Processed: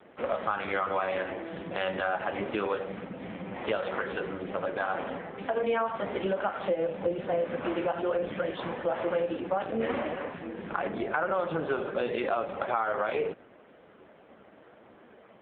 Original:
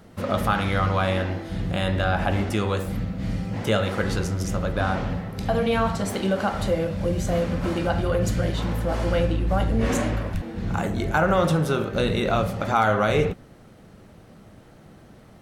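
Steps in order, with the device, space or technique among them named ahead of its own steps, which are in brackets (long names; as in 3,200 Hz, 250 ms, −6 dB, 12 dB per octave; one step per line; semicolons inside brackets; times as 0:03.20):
high-pass filter 120 Hz 12 dB per octave
voicemail (band-pass filter 350–3,200 Hz; downward compressor 10 to 1, threshold −26 dBFS, peak gain reduction 11 dB; level +3 dB; AMR narrowband 5.15 kbit/s 8,000 Hz)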